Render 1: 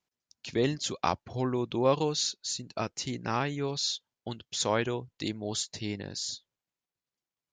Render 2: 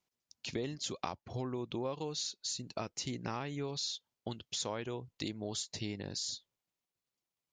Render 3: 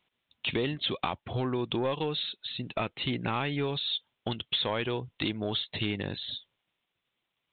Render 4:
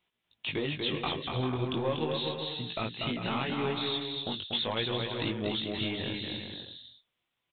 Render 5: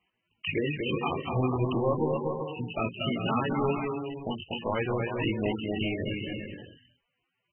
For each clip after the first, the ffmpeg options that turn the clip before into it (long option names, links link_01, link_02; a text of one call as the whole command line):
ffmpeg -i in.wav -af "equalizer=frequency=1600:width=3.1:gain=-3.5,acompressor=threshold=-35dB:ratio=6" out.wav
ffmpeg -i in.wav -af "highshelf=frequency=2000:gain=10.5,aresample=8000,asoftclip=type=tanh:threshold=-29dB,aresample=44100,volume=8.5dB" out.wav
ffmpeg -i in.wav -filter_complex "[0:a]flanger=delay=17:depth=7.2:speed=0.4,asplit=2[link_01][link_02];[link_02]aecho=0:1:240|396|497.4|563.3|606.2:0.631|0.398|0.251|0.158|0.1[link_03];[link_01][link_03]amix=inputs=2:normalize=0" out.wav
ffmpeg -i in.wav -af "volume=4.5dB" -ar 22050 -c:a libmp3lame -b:a 8k out.mp3